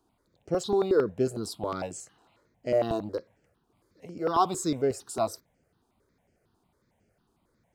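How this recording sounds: notches that jump at a steady rate 11 Hz 560–3800 Hz

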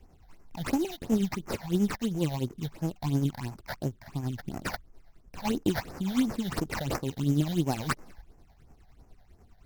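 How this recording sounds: aliases and images of a low sample rate 3400 Hz, jitter 20%; tremolo triangle 9.9 Hz, depth 60%; phasing stages 8, 2.9 Hz, lowest notch 330–3800 Hz; AC-3

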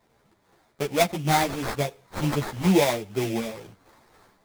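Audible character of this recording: aliases and images of a low sample rate 2900 Hz, jitter 20%; a shimmering, thickened sound

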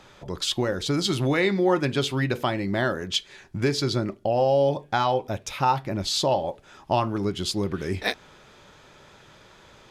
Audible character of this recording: noise floor -53 dBFS; spectral tilt -5.0 dB/oct

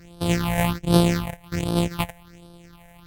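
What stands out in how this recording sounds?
a buzz of ramps at a fixed pitch in blocks of 256 samples; phasing stages 6, 1.3 Hz, lowest notch 320–2000 Hz; Vorbis

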